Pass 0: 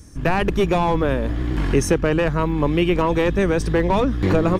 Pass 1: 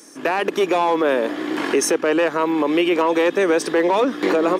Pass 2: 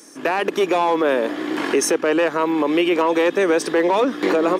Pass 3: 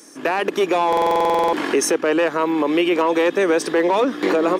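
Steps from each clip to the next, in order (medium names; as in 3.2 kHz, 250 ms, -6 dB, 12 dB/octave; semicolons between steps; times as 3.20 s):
high-pass 310 Hz 24 dB/octave; peak limiter -16.5 dBFS, peak gain reduction 8 dB; trim +7 dB
no audible change
buffer glitch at 0.88 s, samples 2048, times 13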